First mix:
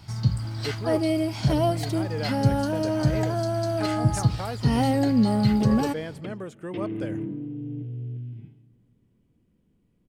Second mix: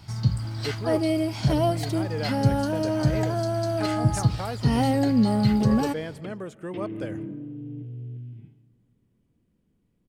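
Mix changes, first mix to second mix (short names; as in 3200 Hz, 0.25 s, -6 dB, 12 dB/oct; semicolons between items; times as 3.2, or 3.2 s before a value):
speech: send +6.0 dB; second sound -3.0 dB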